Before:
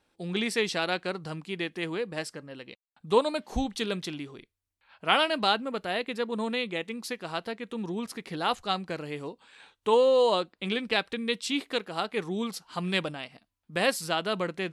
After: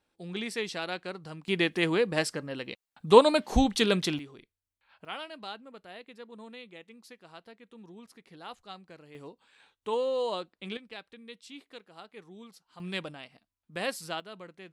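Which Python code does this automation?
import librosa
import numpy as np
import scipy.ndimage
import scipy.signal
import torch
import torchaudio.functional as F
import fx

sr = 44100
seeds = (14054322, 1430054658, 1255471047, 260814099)

y = fx.gain(x, sr, db=fx.steps((0.0, -6.0), (1.48, 6.0), (4.19, -5.0), (5.05, -16.0), (9.15, -8.0), (10.77, -17.5), (12.8, -7.0), (14.2, -16.0)))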